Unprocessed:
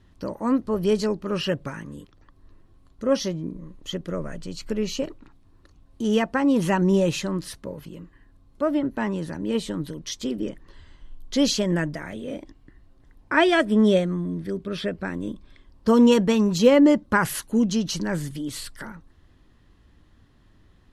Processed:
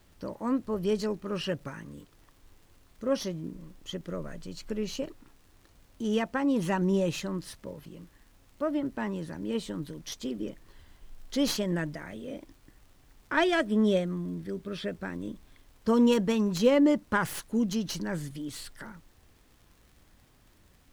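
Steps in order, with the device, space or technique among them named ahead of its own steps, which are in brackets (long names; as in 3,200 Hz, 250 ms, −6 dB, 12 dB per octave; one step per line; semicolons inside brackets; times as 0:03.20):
record under a worn stylus (stylus tracing distortion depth 0.051 ms; surface crackle; pink noise bed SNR 34 dB)
level −6.5 dB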